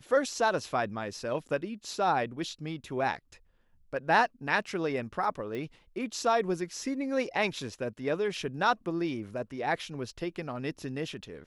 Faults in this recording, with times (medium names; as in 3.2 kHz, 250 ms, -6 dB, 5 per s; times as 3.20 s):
5.55 s: pop -26 dBFS